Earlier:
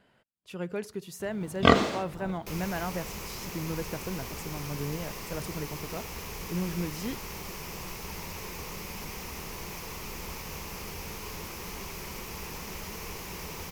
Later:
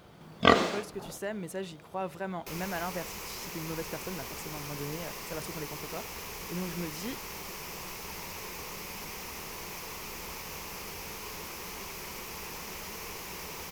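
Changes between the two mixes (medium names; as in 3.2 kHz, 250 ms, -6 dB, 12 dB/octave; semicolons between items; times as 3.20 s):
first sound: entry -1.20 s; master: add bass shelf 230 Hz -8.5 dB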